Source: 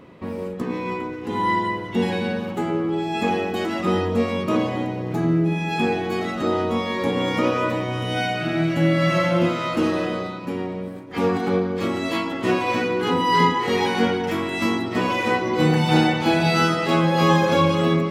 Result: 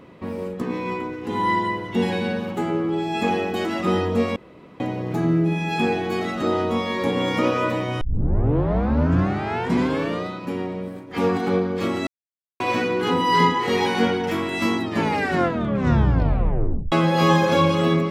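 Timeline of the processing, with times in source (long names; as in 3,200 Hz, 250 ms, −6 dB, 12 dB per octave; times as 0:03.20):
0:04.36–0:04.80: fill with room tone
0:08.01: tape start 2.26 s
0:12.07–0:12.60: silence
0:14.80: tape stop 2.12 s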